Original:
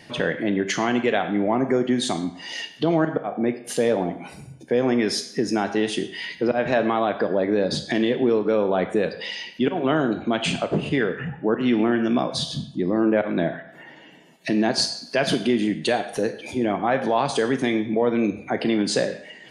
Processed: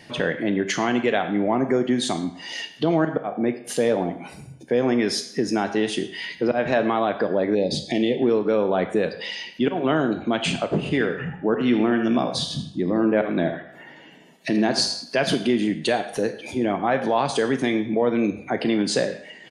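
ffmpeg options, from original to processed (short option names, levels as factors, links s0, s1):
-filter_complex "[0:a]asettb=1/sr,asplit=3[s0][s1][s2];[s0]atrim=end=7.554[s3];[s1]atrim=start=7.55:end=8.22,asetpts=PTS-STARTPTS,afade=t=in:d=0.004:c=qsin,afade=t=out:st=0.666:d=0.004:c=qsin,asuperstop=centerf=1300:order=8:qfactor=1.2[s4];[s2]atrim=start=8.216[s5];[s3][s4]acrossfade=d=0.004:c1=hsin:c2=qsin[s6];[s6][s5]acrossfade=d=0.004:c1=qsin:c2=hsin,asplit=3[s7][s8][s9];[s7]afade=t=out:st=10.84:d=0.02[s10];[s8]aecho=1:1:80|160|240:0.316|0.0917|0.0266,afade=t=in:st=10.84:d=0.02,afade=t=out:st=15.03:d=0.02[s11];[s9]afade=t=in:st=15.03:d=0.02[s12];[s10][s11][s12]amix=inputs=3:normalize=0"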